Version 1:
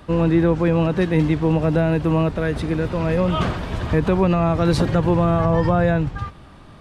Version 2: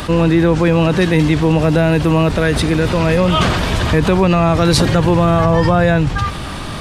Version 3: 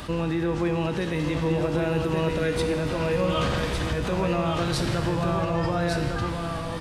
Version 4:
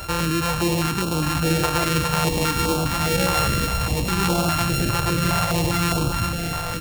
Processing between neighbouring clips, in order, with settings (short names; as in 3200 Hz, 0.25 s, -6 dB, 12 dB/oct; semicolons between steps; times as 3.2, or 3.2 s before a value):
high shelf 2400 Hz +10.5 dB; fast leveller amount 50%; gain +3 dB
limiter -5.5 dBFS, peak gain reduction 4.5 dB; resonator 69 Hz, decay 1.8 s, harmonics all, mix 80%; echo 1.156 s -5 dB
sample sorter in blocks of 32 samples; stepped notch 4.9 Hz 240–1900 Hz; gain +5 dB